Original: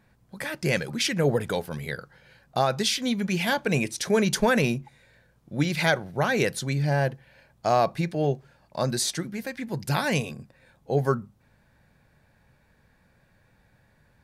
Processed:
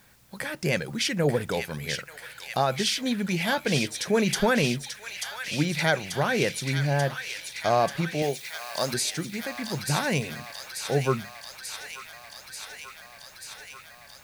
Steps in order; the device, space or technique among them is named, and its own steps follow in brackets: noise-reduction cassette on a plain deck (mismatched tape noise reduction encoder only; wow and flutter; white noise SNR 33 dB); 8.22–8.94 tone controls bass -9 dB, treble +15 dB; thin delay 0.887 s, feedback 76%, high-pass 1700 Hz, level -5.5 dB; gain -1 dB

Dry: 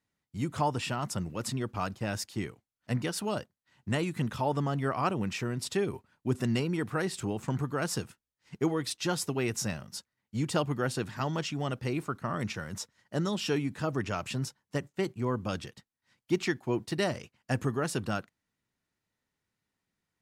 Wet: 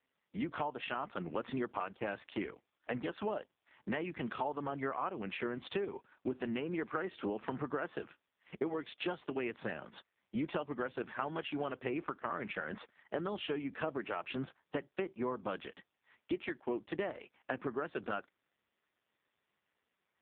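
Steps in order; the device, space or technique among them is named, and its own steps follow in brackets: voicemail (BPF 320–3300 Hz; compressor 12:1, threshold -41 dBFS, peak gain reduction 18.5 dB; gain +9 dB; AMR-NB 5.15 kbps 8000 Hz)

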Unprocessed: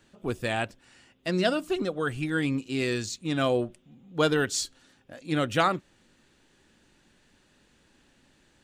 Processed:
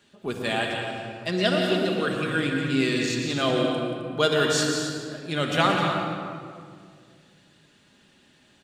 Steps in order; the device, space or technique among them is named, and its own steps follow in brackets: stadium PA (HPF 130 Hz 6 dB/oct; bell 3400 Hz +5 dB 0.78 oct; loudspeakers at several distances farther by 62 m -10 dB, 90 m -11 dB; reverb RT60 1.8 s, pre-delay 0.105 s, DRR 4 dB); shoebox room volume 2600 m³, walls mixed, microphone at 1.3 m

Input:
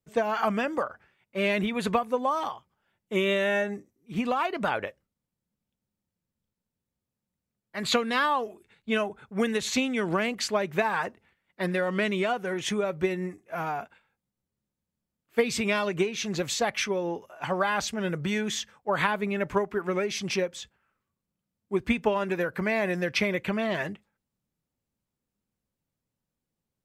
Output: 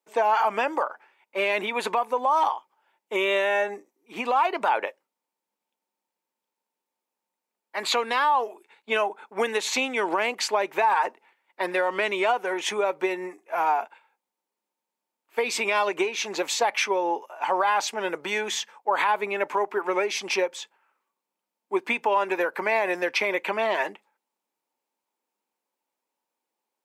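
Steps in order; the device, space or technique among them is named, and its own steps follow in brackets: laptop speaker (HPF 320 Hz 24 dB/oct; bell 900 Hz +12 dB 0.45 oct; bell 2400 Hz +4 dB 0.37 oct; limiter -16 dBFS, peak gain reduction 10 dB); gain +2.5 dB

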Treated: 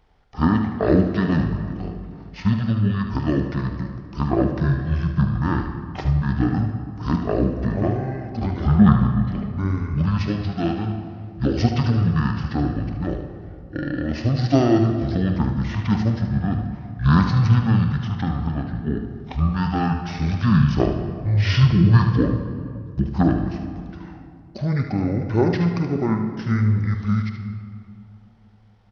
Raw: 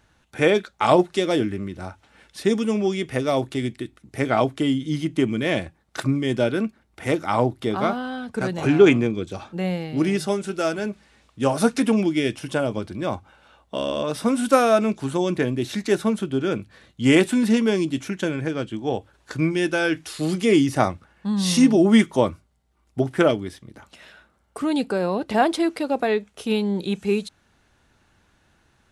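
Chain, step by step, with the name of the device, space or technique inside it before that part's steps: monster voice (pitch shift -11.5 st; low shelf 100 Hz +5 dB; echo 75 ms -9 dB; reverb RT60 2.3 s, pre-delay 26 ms, DRR 6.5 dB); gain -1 dB

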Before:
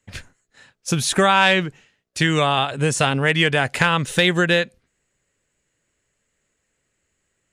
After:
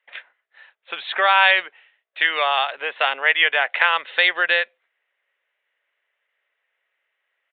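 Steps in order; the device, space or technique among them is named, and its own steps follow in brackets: musical greeting card (downsampling 8000 Hz; HPF 600 Hz 24 dB/oct; bell 2000 Hz +5 dB 0.44 oct)

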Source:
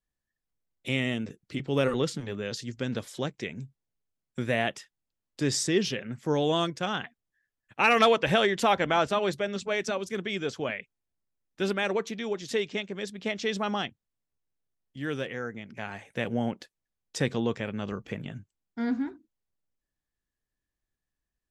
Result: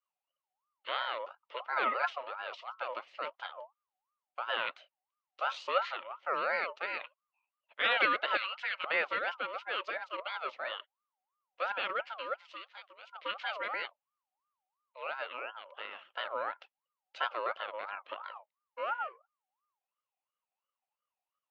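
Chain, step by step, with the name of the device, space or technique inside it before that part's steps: 1.72–2.23 comb 6 ms, depth 83%; 12.34–13.13 pre-emphasis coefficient 0.8; voice changer toy (ring modulator with a swept carrier 980 Hz, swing 25%, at 2.9 Hz; speaker cabinet 500–3800 Hz, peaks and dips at 550 Hz +9 dB, 1300 Hz +6 dB, 2100 Hz +6 dB, 2900 Hz +8 dB); 8.37–8.84 passive tone stack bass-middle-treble 10-0-10; gain -7.5 dB

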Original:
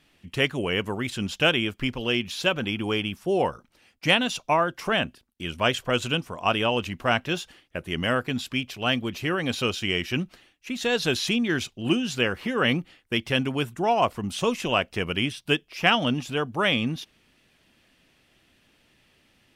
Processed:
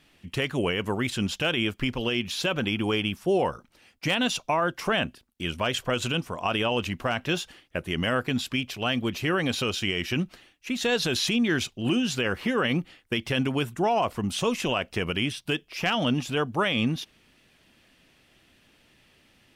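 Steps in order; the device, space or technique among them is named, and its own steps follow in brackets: clipper into limiter (hard clip -9.5 dBFS, distortion -30 dB; limiter -17.5 dBFS, peak gain reduction 8 dB); gain +2 dB

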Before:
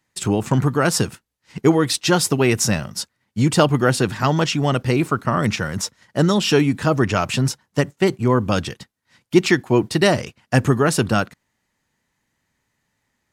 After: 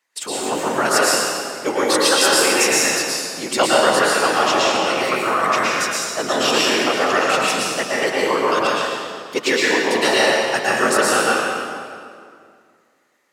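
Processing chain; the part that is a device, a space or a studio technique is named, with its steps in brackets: whispering ghost (whisperiser; HPF 590 Hz 12 dB/oct; reverb RT60 2.2 s, pre-delay 0.105 s, DRR -6 dB)

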